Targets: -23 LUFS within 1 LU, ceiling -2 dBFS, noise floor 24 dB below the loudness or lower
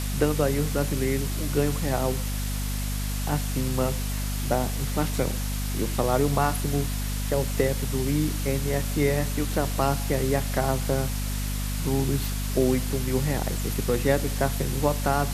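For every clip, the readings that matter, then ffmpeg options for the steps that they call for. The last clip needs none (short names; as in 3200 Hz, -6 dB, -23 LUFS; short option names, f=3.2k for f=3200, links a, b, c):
hum 50 Hz; harmonics up to 250 Hz; hum level -26 dBFS; noise floor -28 dBFS; noise floor target -51 dBFS; loudness -26.5 LUFS; peak -8.0 dBFS; loudness target -23.0 LUFS
-> -af "bandreject=f=50:t=h:w=4,bandreject=f=100:t=h:w=4,bandreject=f=150:t=h:w=4,bandreject=f=200:t=h:w=4,bandreject=f=250:t=h:w=4"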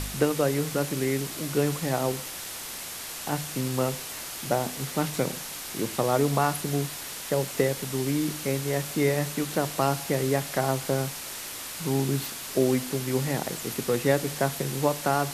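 hum none; noise floor -38 dBFS; noise floor target -52 dBFS
-> -af "afftdn=nr=14:nf=-38"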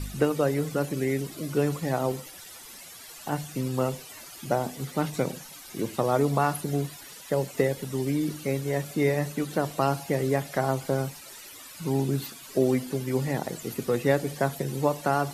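noise floor -45 dBFS; noise floor target -52 dBFS
-> -af "afftdn=nr=7:nf=-45"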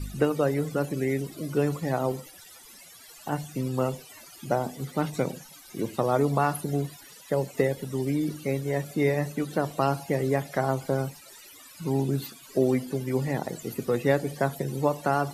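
noise floor -49 dBFS; noise floor target -52 dBFS
-> -af "afftdn=nr=6:nf=-49"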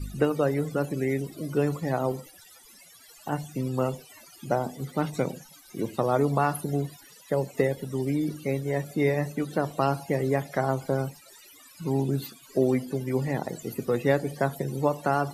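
noise floor -52 dBFS; loudness -28.0 LUFS; peak -10.0 dBFS; loudness target -23.0 LUFS
-> -af "volume=5dB"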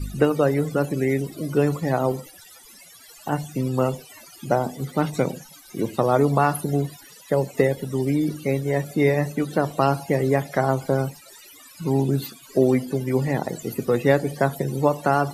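loudness -23.0 LUFS; peak -5.0 dBFS; noise floor -47 dBFS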